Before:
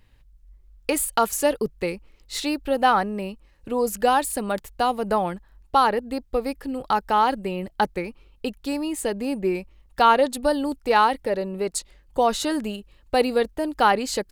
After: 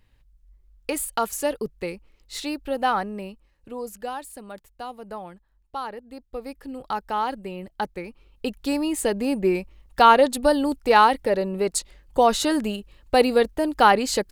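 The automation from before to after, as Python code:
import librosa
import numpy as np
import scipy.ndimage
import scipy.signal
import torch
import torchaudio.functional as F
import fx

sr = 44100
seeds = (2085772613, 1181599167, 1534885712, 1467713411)

y = fx.gain(x, sr, db=fx.line((3.16, -4.0), (4.18, -13.5), (6.02, -13.5), (6.67, -6.0), (7.96, -6.0), (8.63, 2.5)))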